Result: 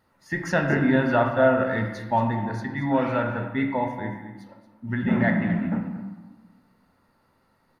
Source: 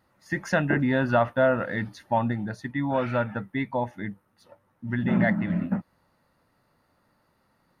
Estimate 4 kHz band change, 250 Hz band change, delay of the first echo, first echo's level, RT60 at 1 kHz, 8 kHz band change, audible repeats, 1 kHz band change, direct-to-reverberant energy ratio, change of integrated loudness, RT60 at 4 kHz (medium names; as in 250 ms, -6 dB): +1.0 dB, +2.5 dB, 228 ms, -14.0 dB, 1.3 s, no reading, 1, +3.0 dB, 2.0 dB, +2.0 dB, 0.70 s